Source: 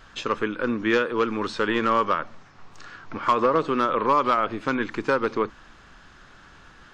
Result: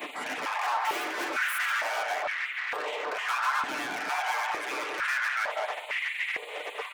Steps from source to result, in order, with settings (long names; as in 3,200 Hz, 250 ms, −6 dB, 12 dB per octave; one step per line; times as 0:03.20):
0:00.63–0:01.72: lower of the sound and its delayed copy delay 4.5 ms
gate on every frequency bin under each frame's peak −20 dB weak
Butterworth band-reject 5,500 Hz, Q 0.67
far-end echo of a speakerphone 200 ms, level −17 dB
mid-hump overdrive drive 23 dB, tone 3,800 Hz, clips at −22 dBFS
in parallel at −0.5 dB: compressor whose output falls as the input rises −42 dBFS, ratio −0.5
on the sum: high-shelf EQ 6,900 Hz +9 dB
soft clipping −32 dBFS, distortion −13 dB
comb filter 6.7 ms, depth 40%
high-pass on a step sequencer 2.2 Hz 260–2,000 Hz